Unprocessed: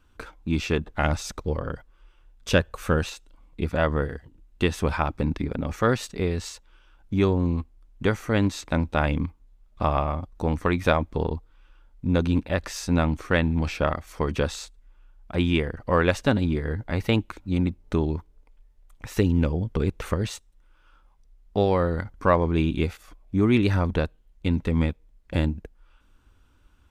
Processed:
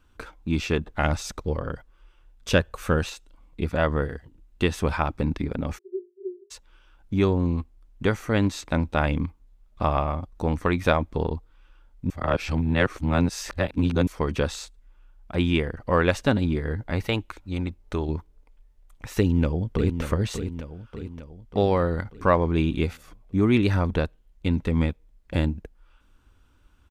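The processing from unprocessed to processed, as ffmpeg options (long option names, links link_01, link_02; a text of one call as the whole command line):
ffmpeg -i in.wav -filter_complex "[0:a]asplit=3[link_01][link_02][link_03];[link_01]afade=type=out:start_time=5.77:duration=0.02[link_04];[link_02]asuperpass=centerf=380:order=20:qfactor=7.6,afade=type=in:start_time=5.77:duration=0.02,afade=type=out:start_time=6.5:duration=0.02[link_05];[link_03]afade=type=in:start_time=6.5:duration=0.02[link_06];[link_04][link_05][link_06]amix=inputs=3:normalize=0,asettb=1/sr,asplit=3[link_07][link_08][link_09];[link_07]atrim=end=17.074[link_10];[link_08]atrim=start=17.07:end=18.09,asetpts=PTS-STARTPTS,afade=type=in:duration=0.004:curve=qsin,afade=type=out:start_time=1.016:duration=0.004:curve=qsin,equalizer=frequency=190:width=0.74:gain=-7.5[link_11];[link_09]atrim=start=18.086[link_12];[link_10][link_11]acrossfade=duration=0.004:curve1=hsin:curve2=qsin[link_13];[link_13][link_12]acrossfade=duration=0.004:curve1=qsin:curve2=hsin,asplit=2[link_14][link_15];[link_15]afade=type=in:start_time=19.19:duration=0.01,afade=type=out:start_time=20.01:duration=0.01,aecho=0:1:590|1180|1770|2360|2950|3540|4130:0.375837|0.206711|0.113691|0.0625299|0.0343915|0.0189153|0.0104034[link_16];[link_14][link_16]amix=inputs=2:normalize=0,asplit=3[link_17][link_18][link_19];[link_17]atrim=end=12.102[link_20];[link_18]atrim=start=12.098:end=14.072,asetpts=PTS-STARTPTS,areverse[link_21];[link_19]atrim=start=14.068[link_22];[link_20][link_21]acrossfade=duration=0.004:curve1=hsin:curve2=hsin[link_23];[link_23][link_22]acrossfade=duration=0.004:curve1=hsin:curve2=hsin" out.wav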